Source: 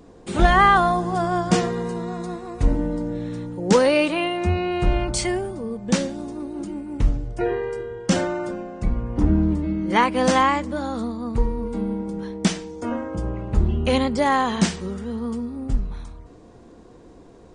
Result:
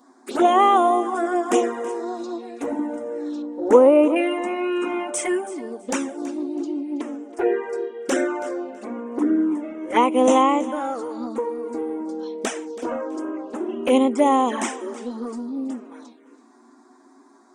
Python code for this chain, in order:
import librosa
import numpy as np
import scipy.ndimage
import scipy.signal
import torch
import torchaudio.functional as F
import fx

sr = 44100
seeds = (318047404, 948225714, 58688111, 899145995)

p1 = fx.env_phaser(x, sr, low_hz=400.0, high_hz=4400.0, full_db=-22.5)
p2 = fx.brickwall_highpass(p1, sr, low_hz=230.0)
p3 = fx.env_flanger(p2, sr, rest_ms=8.5, full_db=-18.0)
p4 = fx.high_shelf_res(p3, sr, hz=2100.0, db=-11.0, q=1.5, at=(3.42, 4.16))
p5 = p4 + fx.echo_feedback(p4, sr, ms=327, feedback_pct=23, wet_db=-17.0, dry=0)
y = p5 * 10.0 ** (5.5 / 20.0)